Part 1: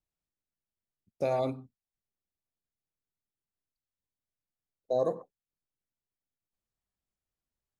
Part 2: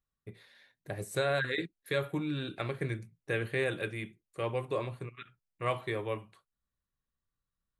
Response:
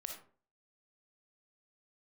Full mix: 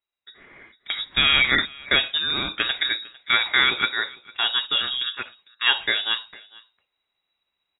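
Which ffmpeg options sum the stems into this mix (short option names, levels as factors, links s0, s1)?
-filter_complex "[0:a]volume=0.178[s0];[1:a]volume=0.596,asplit=2[s1][s2];[s2]volume=0.0708,aecho=0:1:452:1[s3];[s0][s1][s3]amix=inputs=3:normalize=0,dynaudnorm=f=100:g=9:m=3.98,crystalizer=i=8.5:c=0,lowpass=f=3300:t=q:w=0.5098,lowpass=f=3300:t=q:w=0.6013,lowpass=f=3300:t=q:w=0.9,lowpass=f=3300:t=q:w=2.563,afreqshift=-3900"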